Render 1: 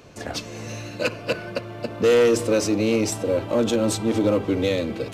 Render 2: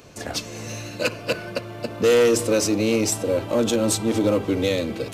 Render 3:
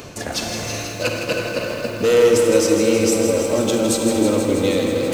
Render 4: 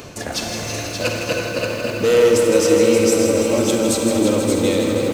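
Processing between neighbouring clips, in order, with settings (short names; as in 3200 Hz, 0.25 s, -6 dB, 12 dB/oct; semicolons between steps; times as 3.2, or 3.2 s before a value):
high shelf 5700 Hz +8 dB
reverb RT60 3.0 s, pre-delay 33 ms, DRR 4 dB; reverse; upward compressor, threshold -18 dBFS; reverse; lo-fi delay 0.161 s, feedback 80%, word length 7-bit, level -8 dB
echo 0.577 s -6.5 dB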